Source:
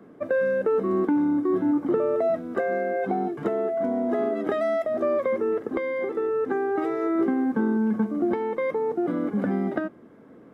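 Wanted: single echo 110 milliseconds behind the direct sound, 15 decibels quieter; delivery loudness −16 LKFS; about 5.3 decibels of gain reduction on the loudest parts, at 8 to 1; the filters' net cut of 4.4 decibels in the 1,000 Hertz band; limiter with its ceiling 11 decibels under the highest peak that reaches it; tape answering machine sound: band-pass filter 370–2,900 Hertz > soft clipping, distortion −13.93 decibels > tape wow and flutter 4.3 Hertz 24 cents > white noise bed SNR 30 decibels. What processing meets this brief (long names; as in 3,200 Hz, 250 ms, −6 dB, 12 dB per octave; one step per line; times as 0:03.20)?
parametric band 1,000 Hz −6.5 dB
downward compressor 8 to 1, threshold −25 dBFS
brickwall limiter −27 dBFS
band-pass filter 370–2,900 Hz
single-tap delay 110 ms −15 dB
soft clipping −34 dBFS
tape wow and flutter 4.3 Hz 24 cents
white noise bed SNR 30 dB
level +23.5 dB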